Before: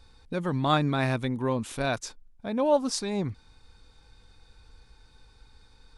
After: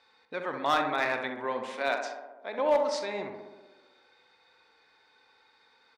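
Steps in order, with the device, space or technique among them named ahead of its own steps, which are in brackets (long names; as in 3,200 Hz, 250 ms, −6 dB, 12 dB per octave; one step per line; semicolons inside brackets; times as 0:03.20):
0:01.74–0:02.59: high-pass filter 240 Hz 24 dB per octave
tape delay 65 ms, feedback 79%, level −5 dB, low-pass 1,800 Hz
megaphone (band-pass filter 530–3,800 Hz; parametric band 2,000 Hz +8 dB 0.27 octaves; hard clipping −18 dBFS, distortion −18 dB; double-tracking delay 43 ms −13 dB)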